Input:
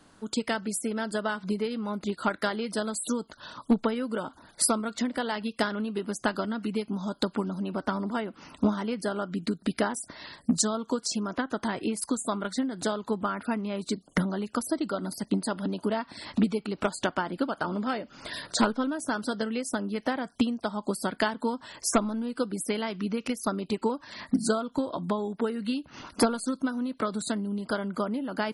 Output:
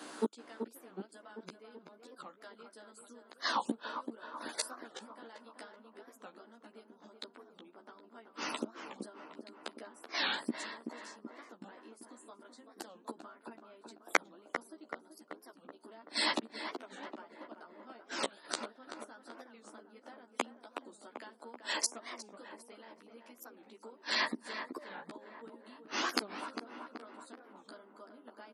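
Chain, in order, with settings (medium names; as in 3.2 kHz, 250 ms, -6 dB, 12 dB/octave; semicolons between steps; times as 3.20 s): inverted gate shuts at -27 dBFS, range -35 dB; high-pass 270 Hz 24 dB/octave; doubling 13 ms -3.5 dB; on a send: tape echo 381 ms, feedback 67%, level -6 dB, low-pass 1.7 kHz; on the sum: warped record 45 rpm, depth 250 cents; trim +9.5 dB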